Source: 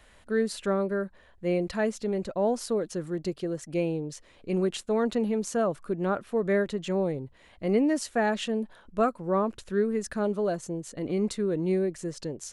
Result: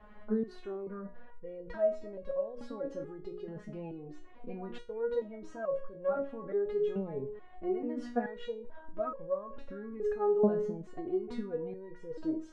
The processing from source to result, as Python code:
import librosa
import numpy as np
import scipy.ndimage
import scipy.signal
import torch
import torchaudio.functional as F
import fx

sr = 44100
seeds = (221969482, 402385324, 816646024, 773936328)

p1 = scipy.signal.sosfilt(scipy.signal.butter(2, 1100.0, 'lowpass', fs=sr, output='sos'), x)
p2 = fx.hum_notches(p1, sr, base_hz=60, count=10)
p3 = fx.over_compress(p2, sr, threshold_db=-37.0, ratio=-1.0)
p4 = p2 + (p3 * librosa.db_to_amplitude(3.0))
p5 = fx.resonator_held(p4, sr, hz=2.3, low_hz=210.0, high_hz=550.0)
y = p5 * librosa.db_to_amplitude(6.5)